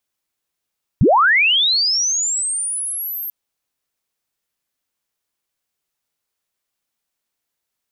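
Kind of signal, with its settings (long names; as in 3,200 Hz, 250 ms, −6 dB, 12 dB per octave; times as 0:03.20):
glide linear 77 Hz → 13,000 Hz −8.5 dBFS → −24 dBFS 2.29 s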